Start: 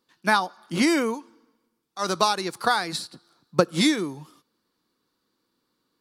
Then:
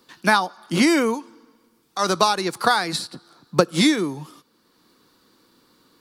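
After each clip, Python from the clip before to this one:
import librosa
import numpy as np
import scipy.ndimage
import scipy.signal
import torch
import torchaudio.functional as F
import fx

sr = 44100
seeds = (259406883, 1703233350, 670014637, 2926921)

y = fx.band_squash(x, sr, depth_pct=40)
y = F.gain(torch.from_numpy(y), 4.0).numpy()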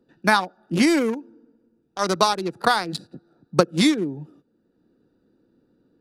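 y = fx.wiener(x, sr, points=41)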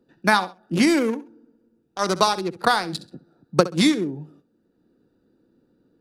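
y = fx.echo_feedback(x, sr, ms=66, feedback_pct=25, wet_db=-16.0)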